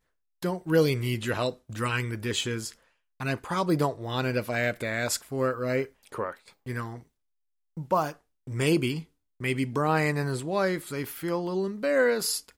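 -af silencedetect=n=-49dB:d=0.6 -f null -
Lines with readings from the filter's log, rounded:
silence_start: 7.02
silence_end: 7.77 | silence_duration: 0.74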